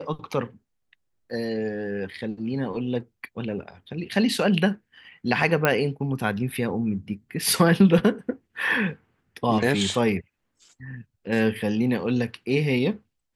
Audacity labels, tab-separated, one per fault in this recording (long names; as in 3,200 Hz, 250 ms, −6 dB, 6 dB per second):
5.650000	5.650000	click −6 dBFS